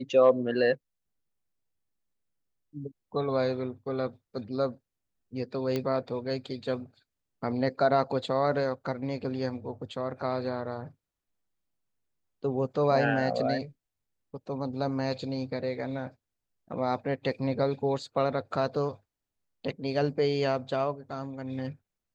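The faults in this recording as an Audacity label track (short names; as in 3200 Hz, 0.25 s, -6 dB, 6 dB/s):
5.760000	5.760000	pop -17 dBFS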